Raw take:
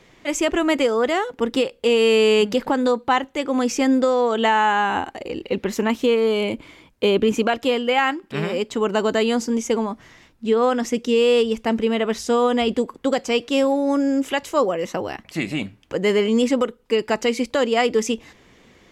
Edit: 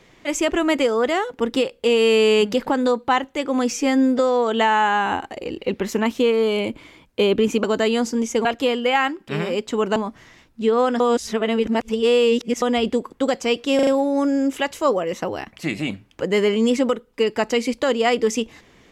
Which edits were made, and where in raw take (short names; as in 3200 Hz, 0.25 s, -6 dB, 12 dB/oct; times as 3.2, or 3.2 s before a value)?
3.71–4.03 stretch 1.5×
8.99–9.8 move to 7.48
10.84–12.46 reverse
13.59 stutter 0.04 s, 4 plays